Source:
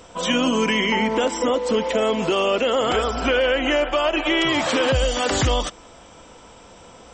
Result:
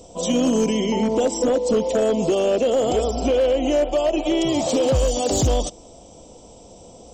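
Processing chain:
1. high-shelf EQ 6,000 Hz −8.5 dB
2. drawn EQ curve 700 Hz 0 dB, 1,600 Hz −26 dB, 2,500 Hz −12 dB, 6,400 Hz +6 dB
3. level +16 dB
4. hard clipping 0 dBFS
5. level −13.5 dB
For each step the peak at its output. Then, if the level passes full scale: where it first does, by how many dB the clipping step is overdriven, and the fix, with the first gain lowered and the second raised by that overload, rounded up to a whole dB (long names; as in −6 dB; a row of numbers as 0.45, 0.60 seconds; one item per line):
−10.5, −11.0, +5.0, 0.0, −13.5 dBFS
step 3, 5.0 dB
step 3 +11 dB, step 5 −8.5 dB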